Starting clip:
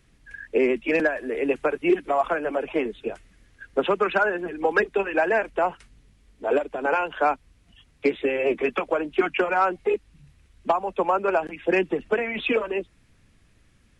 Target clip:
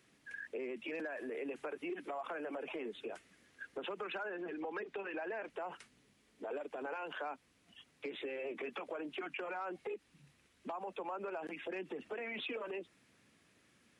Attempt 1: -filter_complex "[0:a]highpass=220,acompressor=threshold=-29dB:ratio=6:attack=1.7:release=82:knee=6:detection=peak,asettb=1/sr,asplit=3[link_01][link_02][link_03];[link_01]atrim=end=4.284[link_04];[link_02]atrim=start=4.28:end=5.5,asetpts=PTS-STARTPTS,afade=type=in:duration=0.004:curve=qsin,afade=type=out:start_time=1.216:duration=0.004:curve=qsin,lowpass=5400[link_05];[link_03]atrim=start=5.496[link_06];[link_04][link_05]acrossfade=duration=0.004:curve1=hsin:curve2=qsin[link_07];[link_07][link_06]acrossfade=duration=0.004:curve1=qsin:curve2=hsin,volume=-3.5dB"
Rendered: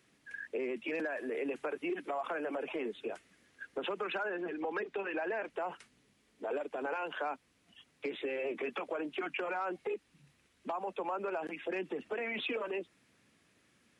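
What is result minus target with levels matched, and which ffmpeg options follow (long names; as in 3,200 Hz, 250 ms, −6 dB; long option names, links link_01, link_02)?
downward compressor: peak gain reduction −5.5 dB
-filter_complex "[0:a]highpass=220,acompressor=threshold=-35.5dB:ratio=6:attack=1.7:release=82:knee=6:detection=peak,asettb=1/sr,asplit=3[link_01][link_02][link_03];[link_01]atrim=end=4.284[link_04];[link_02]atrim=start=4.28:end=5.5,asetpts=PTS-STARTPTS,afade=type=in:duration=0.004:curve=qsin,afade=type=out:start_time=1.216:duration=0.004:curve=qsin,lowpass=5400[link_05];[link_03]atrim=start=5.496[link_06];[link_04][link_05]acrossfade=duration=0.004:curve1=hsin:curve2=qsin[link_07];[link_07][link_06]acrossfade=duration=0.004:curve1=qsin:curve2=hsin,volume=-3.5dB"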